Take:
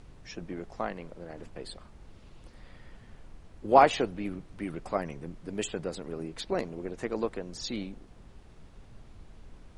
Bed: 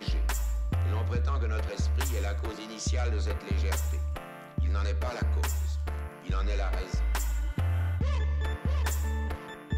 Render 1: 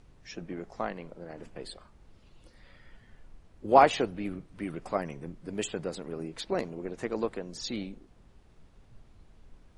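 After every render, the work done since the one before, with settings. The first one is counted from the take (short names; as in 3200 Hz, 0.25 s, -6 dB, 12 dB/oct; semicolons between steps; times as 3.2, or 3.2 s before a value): noise print and reduce 6 dB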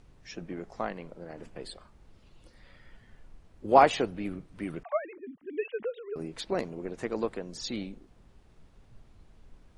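4.83–6.16 sine-wave speech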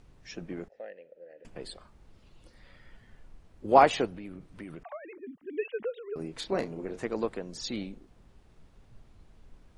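0.68–1.45 vowel filter e; 4.06–5.24 compressor 4:1, threshold -39 dBFS; 6.33–7 doubler 31 ms -8 dB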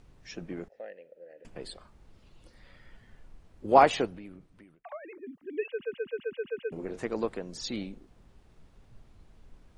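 4–4.84 fade out; 5.68 stutter in place 0.13 s, 8 plays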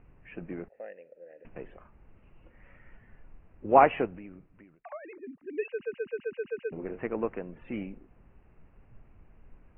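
steep low-pass 2800 Hz 96 dB/oct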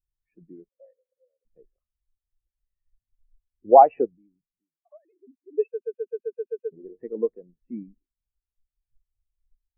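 maximiser +12.5 dB; spectral expander 2.5:1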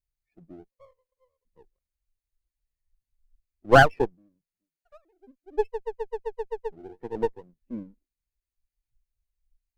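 minimum comb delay 0.45 ms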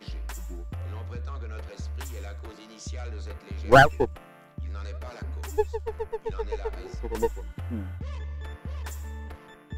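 add bed -7 dB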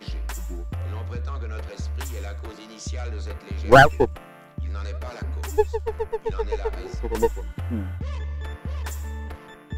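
gain +5 dB; limiter -1 dBFS, peak gain reduction 3 dB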